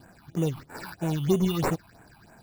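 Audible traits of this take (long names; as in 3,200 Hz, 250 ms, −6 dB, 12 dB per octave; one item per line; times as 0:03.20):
aliases and images of a low sample rate 3,200 Hz, jitter 0%
phaser sweep stages 6, 3.1 Hz, lowest notch 460–4,900 Hz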